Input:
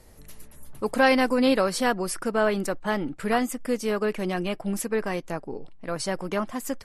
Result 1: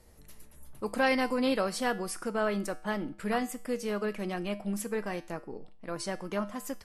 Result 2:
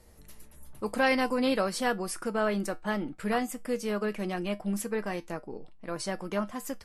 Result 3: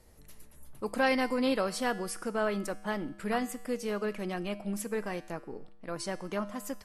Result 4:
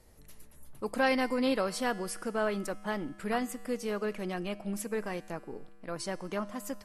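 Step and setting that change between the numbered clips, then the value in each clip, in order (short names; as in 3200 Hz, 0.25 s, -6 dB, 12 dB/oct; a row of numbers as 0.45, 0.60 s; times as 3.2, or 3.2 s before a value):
resonator, decay: 0.45, 0.18, 0.98, 2.1 s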